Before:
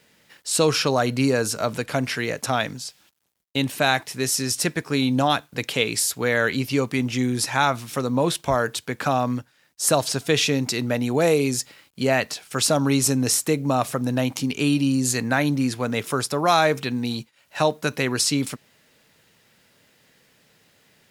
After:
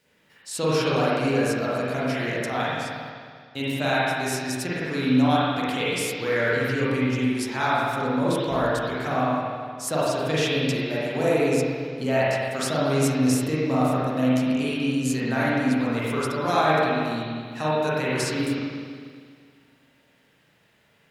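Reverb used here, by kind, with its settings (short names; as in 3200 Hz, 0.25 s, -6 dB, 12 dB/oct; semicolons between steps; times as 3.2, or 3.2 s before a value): spring tank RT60 2 s, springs 39/51 ms, chirp 75 ms, DRR -8.5 dB; gain -10 dB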